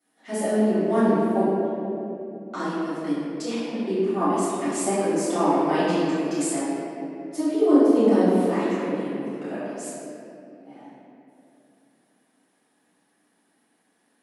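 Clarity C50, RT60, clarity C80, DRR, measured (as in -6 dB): -4.0 dB, 2.8 s, -2.0 dB, -14.0 dB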